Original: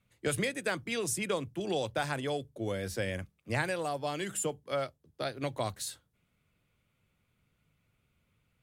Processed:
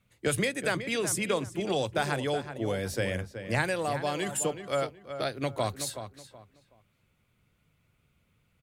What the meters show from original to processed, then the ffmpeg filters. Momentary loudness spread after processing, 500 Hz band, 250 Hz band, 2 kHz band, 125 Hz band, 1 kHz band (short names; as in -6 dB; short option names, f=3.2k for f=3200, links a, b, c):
7 LU, +4.0 dB, +4.0 dB, +4.0 dB, +4.0 dB, +4.0 dB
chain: -filter_complex "[0:a]asplit=2[a][b];[b]adelay=374,lowpass=f=2.7k:p=1,volume=-9.5dB,asplit=2[c][d];[d]adelay=374,lowpass=f=2.7k:p=1,volume=0.27,asplit=2[e][f];[f]adelay=374,lowpass=f=2.7k:p=1,volume=0.27[g];[a][c][e][g]amix=inputs=4:normalize=0,volume=3.5dB"